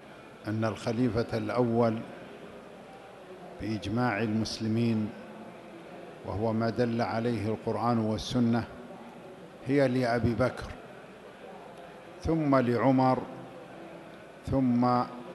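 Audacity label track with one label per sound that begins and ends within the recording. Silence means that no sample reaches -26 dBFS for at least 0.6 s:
3.630000	5.060000	sound
6.280000	8.600000	sound
9.690000	10.600000	sound
12.250000	13.230000	sound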